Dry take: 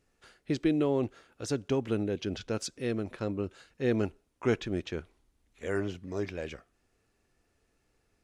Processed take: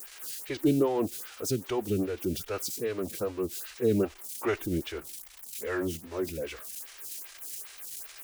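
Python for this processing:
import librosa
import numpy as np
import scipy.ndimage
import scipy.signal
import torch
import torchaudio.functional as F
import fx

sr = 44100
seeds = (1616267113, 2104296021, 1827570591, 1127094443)

y = x + 0.5 * 10.0 ** (-32.0 / 20.0) * np.diff(np.sign(x), prepend=np.sign(x[:1]))
y = fx.pitch_keep_formants(y, sr, semitones=-1.5)
y = fx.stagger_phaser(y, sr, hz=2.5)
y = y * librosa.db_to_amplitude(4.5)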